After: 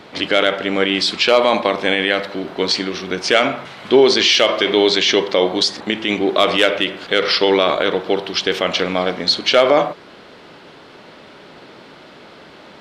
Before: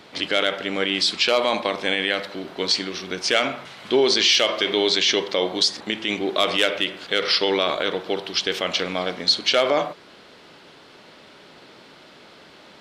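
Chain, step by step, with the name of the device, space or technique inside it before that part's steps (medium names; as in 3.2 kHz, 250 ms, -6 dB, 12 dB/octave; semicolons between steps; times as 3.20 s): behind a face mask (treble shelf 3.1 kHz -8 dB); trim +7.5 dB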